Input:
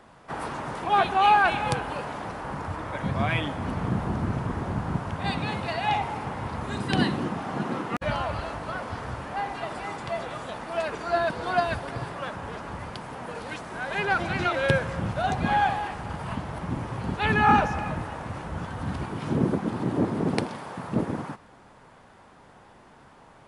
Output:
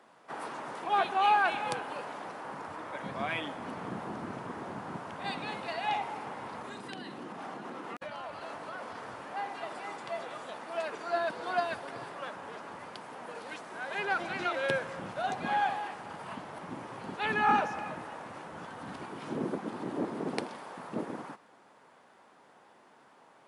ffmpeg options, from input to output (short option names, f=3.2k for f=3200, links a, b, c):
-filter_complex "[0:a]asettb=1/sr,asplit=3[a][b][c];[a]atrim=end=6.604[d];[b]atrim=start=6.6:end=8.95,asetpts=PTS-STARTPTS,afade=t=in:d=0.004:c=qsin,afade=t=out:st=2.346:d=0.004:c=qsin,acompressor=threshold=-29dB:ratio=12:attack=3.2:release=140:knee=1:detection=peak[e];[c]atrim=start=8.946[f];[d][e]acrossfade=d=0.004:c1=hsin:c2=qsin[g];[g][f]acrossfade=d=0.004:c1=qsin:c2=hsin,highpass=270,volume=-6dB"